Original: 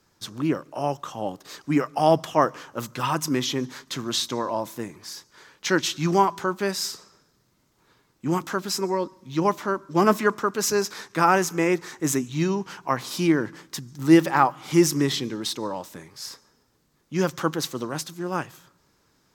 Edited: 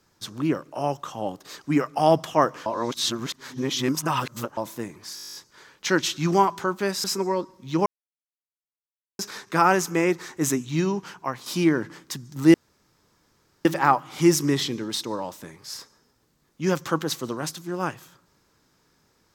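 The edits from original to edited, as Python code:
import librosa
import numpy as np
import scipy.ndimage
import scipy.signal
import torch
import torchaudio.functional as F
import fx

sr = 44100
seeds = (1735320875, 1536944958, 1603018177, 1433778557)

y = fx.edit(x, sr, fx.reverse_span(start_s=2.66, length_s=1.91),
    fx.stutter(start_s=5.15, slice_s=0.02, count=11),
    fx.cut(start_s=6.84, length_s=1.83),
    fx.silence(start_s=9.49, length_s=1.33),
    fx.fade_out_to(start_s=12.62, length_s=0.47, floor_db=-9.5),
    fx.insert_room_tone(at_s=14.17, length_s=1.11), tone=tone)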